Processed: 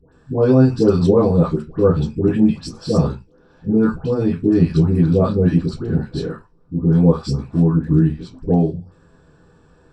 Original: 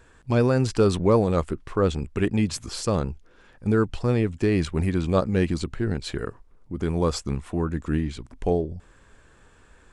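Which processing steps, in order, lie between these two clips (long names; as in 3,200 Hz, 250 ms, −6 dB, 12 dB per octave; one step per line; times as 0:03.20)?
all-pass dispersion highs, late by 124 ms, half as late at 1,100 Hz
convolution reverb RT60 0.20 s, pre-delay 3 ms, DRR −6 dB
level −9.5 dB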